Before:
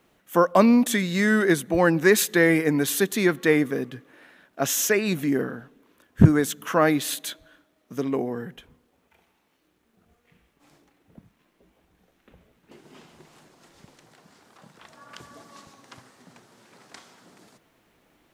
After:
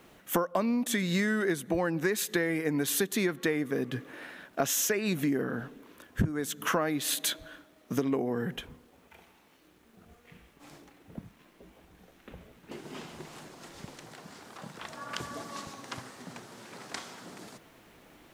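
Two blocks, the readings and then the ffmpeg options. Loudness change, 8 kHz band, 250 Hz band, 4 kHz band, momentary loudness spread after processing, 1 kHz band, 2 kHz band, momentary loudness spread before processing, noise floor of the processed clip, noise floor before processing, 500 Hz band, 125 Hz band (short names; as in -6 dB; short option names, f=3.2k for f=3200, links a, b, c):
-9.5 dB, -4.0 dB, -8.5 dB, -3.0 dB, 19 LU, -8.0 dB, -8.0 dB, 14 LU, -61 dBFS, -68 dBFS, -8.5 dB, -10.0 dB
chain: -af "acompressor=threshold=-32dB:ratio=16,volume=7dB"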